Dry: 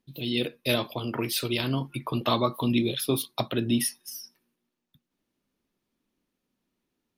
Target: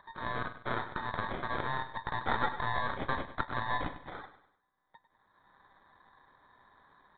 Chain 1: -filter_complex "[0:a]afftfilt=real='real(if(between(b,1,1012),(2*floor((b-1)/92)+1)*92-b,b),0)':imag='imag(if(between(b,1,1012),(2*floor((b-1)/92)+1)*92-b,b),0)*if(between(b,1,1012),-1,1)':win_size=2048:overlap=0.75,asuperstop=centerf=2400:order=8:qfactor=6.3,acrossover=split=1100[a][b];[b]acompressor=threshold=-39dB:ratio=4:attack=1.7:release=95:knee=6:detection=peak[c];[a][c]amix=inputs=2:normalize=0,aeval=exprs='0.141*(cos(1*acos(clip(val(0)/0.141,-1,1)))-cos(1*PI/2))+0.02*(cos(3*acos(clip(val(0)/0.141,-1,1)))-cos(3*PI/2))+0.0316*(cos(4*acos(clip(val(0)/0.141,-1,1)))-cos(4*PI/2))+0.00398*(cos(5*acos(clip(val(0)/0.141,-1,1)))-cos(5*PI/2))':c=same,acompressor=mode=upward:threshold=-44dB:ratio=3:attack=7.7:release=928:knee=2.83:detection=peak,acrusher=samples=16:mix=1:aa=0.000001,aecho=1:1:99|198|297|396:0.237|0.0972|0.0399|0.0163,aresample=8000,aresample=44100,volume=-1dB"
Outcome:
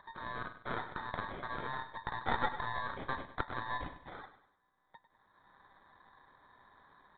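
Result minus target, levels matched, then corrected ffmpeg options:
compressor: peak gain reduction +7 dB
-filter_complex "[0:a]afftfilt=real='real(if(between(b,1,1012),(2*floor((b-1)/92)+1)*92-b,b),0)':imag='imag(if(between(b,1,1012),(2*floor((b-1)/92)+1)*92-b,b),0)*if(between(b,1,1012),-1,1)':win_size=2048:overlap=0.75,asuperstop=centerf=2400:order=8:qfactor=6.3,acrossover=split=1100[a][b];[b]acompressor=threshold=-29.5dB:ratio=4:attack=1.7:release=95:knee=6:detection=peak[c];[a][c]amix=inputs=2:normalize=0,aeval=exprs='0.141*(cos(1*acos(clip(val(0)/0.141,-1,1)))-cos(1*PI/2))+0.02*(cos(3*acos(clip(val(0)/0.141,-1,1)))-cos(3*PI/2))+0.0316*(cos(4*acos(clip(val(0)/0.141,-1,1)))-cos(4*PI/2))+0.00398*(cos(5*acos(clip(val(0)/0.141,-1,1)))-cos(5*PI/2))':c=same,acompressor=mode=upward:threshold=-44dB:ratio=3:attack=7.7:release=928:knee=2.83:detection=peak,acrusher=samples=16:mix=1:aa=0.000001,aecho=1:1:99|198|297|396:0.237|0.0972|0.0399|0.0163,aresample=8000,aresample=44100,volume=-1dB"

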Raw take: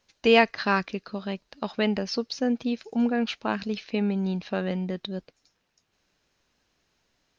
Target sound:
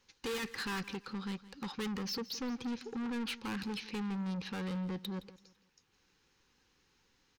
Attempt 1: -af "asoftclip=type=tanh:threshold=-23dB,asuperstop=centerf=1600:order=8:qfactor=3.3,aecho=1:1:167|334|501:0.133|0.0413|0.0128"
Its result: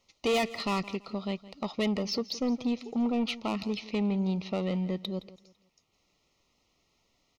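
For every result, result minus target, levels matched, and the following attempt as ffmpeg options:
2000 Hz band -4.0 dB; soft clip: distortion -5 dB
-af "asoftclip=type=tanh:threshold=-23dB,asuperstop=centerf=640:order=8:qfactor=3.3,aecho=1:1:167|334|501:0.133|0.0413|0.0128"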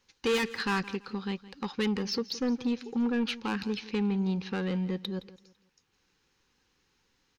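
soft clip: distortion -5 dB
-af "asoftclip=type=tanh:threshold=-35dB,asuperstop=centerf=640:order=8:qfactor=3.3,aecho=1:1:167|334|501:0.133|0.0413|0.0128"

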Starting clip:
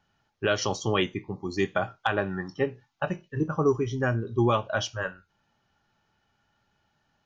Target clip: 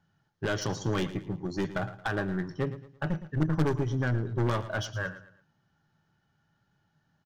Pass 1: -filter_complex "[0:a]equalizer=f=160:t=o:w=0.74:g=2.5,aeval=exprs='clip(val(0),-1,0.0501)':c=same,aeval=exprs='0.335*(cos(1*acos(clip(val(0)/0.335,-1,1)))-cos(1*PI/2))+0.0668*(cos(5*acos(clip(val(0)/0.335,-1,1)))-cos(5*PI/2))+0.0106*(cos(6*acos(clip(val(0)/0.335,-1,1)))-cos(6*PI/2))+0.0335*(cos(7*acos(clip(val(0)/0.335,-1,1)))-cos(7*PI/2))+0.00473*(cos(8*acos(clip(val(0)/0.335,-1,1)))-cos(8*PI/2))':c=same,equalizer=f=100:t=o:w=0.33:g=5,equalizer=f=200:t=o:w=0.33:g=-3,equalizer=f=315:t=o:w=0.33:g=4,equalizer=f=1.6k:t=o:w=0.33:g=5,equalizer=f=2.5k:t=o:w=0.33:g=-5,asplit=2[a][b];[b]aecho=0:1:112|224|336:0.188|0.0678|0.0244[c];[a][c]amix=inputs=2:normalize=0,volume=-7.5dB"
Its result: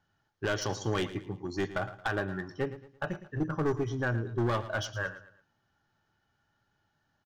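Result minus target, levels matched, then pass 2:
125 Hz band -2.5 dB
-filter_complex "[0:a]equalizer=f=160:t=o:w=0.74:g=14.5,aeval=exprs='clip(val(0),-1,0.0501)':c=same,aeval=exprs='0.335*(cos(1*acos(clip(val(0)/0.335,-1,1)))-cos(1*PI/2))+0.0668*(cos(5*acos(clip(val(0)/0.335,-1,1)))-cos(5*PI/2))+0.0106*(cos(6*acos(clip(val(0)/0.335,-1,1)))-cos(6*PI/2))+0.0335*(cos(7*acos(clip(val(0)/0.335,-1,1)))-cos(7*PI/2))+0.00473*(cos(8*acos(clip(val(0)/0.335,-1,1)))-cos(8*PI/2))':c=same,equalizer=f=100:t=o:w=0.33:g=5,equalizer=f=200:t=o:w=0.33:g=-3,equalizer=f=315:t=o:w=0.33:g=4,equalizer=f=1.6k:t=o:w=0.33:g=5,equalizer=f=2.5k:t=o:w=0.33:g=-5,asplit=2[a][b];[b]aecho=0:1:112|224|336:0.188|0.0678|0.0244[c];[a][c]amix=inputs=2:normalize=0,volume=-7.5dB"

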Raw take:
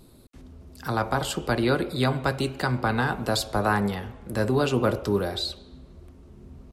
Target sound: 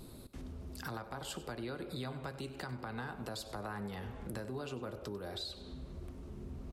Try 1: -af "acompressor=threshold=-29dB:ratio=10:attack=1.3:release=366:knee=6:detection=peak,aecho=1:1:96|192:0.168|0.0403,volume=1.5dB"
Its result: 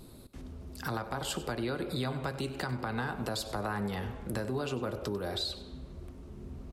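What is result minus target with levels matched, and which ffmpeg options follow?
compressor: peak gain reduction -7.5 dB
-af "acompressor=threshold=-37.5dB:ratio=10:attack=1.3:release=366:knee=6:detection=peak,aecho=1:1:96|192:0.168|0.0403,volume=1.5dB"

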